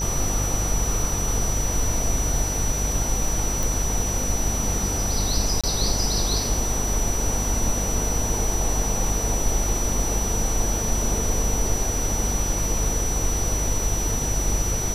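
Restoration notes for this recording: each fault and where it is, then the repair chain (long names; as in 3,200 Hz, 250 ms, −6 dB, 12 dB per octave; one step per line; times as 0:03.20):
mains buzz 50 Hz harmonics 29 −28 dBFS
whistle 5,900 Hz −27 dBFS
0:03.63: click
0:05.61–0:05.64: drop-out 26 ms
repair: click removal
hum removal 50 Hz, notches 29
notch filter 5,900 Hz, Q 30
repair the gap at 0:05.61, 26 ms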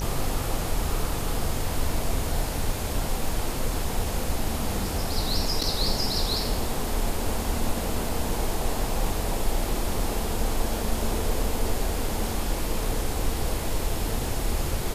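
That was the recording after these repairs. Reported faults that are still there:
none of them is left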